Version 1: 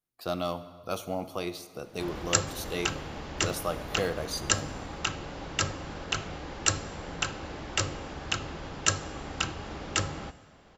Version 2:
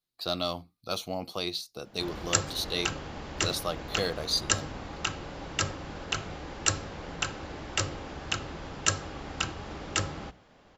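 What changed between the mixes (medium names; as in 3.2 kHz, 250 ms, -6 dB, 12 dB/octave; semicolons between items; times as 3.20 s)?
speech: add peaking EQ 4.1 kHz +14.5 dB 0.67 oct; reverb: off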